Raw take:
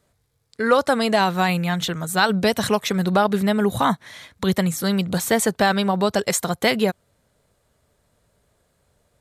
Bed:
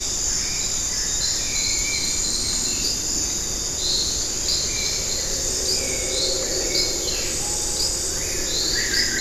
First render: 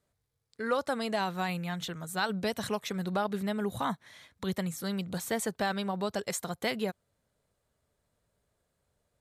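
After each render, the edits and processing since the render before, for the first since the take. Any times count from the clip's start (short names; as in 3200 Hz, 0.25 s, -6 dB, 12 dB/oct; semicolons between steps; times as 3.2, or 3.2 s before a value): gain -12.5 dB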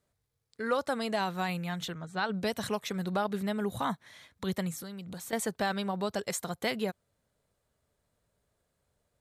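1.93–2.34 air absorption 140 m; 4.79–5.33 compressor 5:1, threshold -39 dBFS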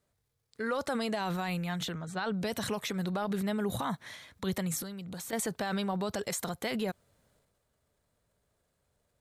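transient shaper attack +1 dB, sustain +8 dB; limiter -23.5 dBFS, peak gain reduction 6 dB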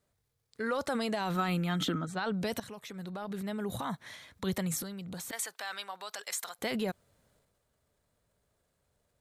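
1.35–2.05 small resonant body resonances 280/1300/3200 Hz, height 14 dB -> 17 dB; 2.6–4.45 fade in, from -14 dB; 5.31–6.59 HPF 1100 Hz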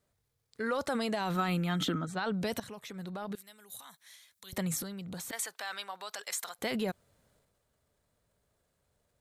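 3.35–4.53 pre-emphasis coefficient 0.97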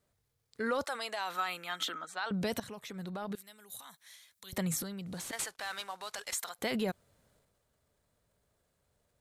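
0.84–2.31 HPF 790 Hz; 5.06–6.34 CVSD 64 kbps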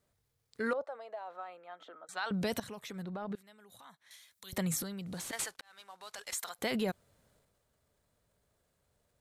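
0.73–2.09 band-pass 590 Hz, Q 2.6; 3.02–4.11 LPF 1600 Hz 6 dB/oct; 5.61–6.53 fade in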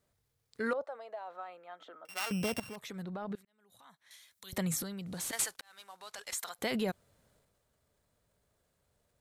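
2.05–2.76 sample sorter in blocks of 16 samples; 3.45–4.34 fade in equal-power; 5.2–6 high shelf 5100 Hz -> 8100 Hz +7.5 dB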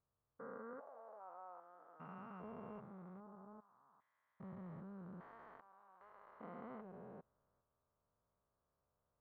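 stepped spectrum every 0.4 s; ladder low-pass 1300 Hz, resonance 55%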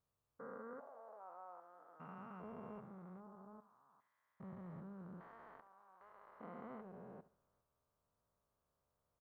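feedback echo 72 ms, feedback 26%, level -16 dB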